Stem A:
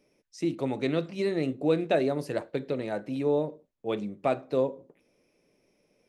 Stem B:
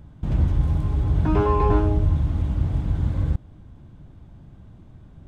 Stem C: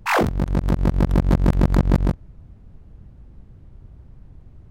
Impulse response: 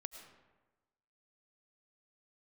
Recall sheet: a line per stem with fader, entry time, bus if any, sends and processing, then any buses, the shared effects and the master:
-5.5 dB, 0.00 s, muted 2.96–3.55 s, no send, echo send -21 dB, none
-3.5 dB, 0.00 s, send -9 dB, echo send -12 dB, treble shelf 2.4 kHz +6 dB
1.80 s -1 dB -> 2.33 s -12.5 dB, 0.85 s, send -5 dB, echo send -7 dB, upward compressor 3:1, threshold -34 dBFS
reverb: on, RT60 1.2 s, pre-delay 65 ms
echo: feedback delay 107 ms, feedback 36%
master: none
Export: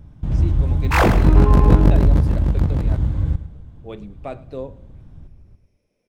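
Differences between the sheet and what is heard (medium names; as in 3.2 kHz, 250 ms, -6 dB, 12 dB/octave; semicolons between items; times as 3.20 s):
stem B: missing treble shelf 2.4 kHz +6 dB; master: extra bass shelf 150 Hz +6 dB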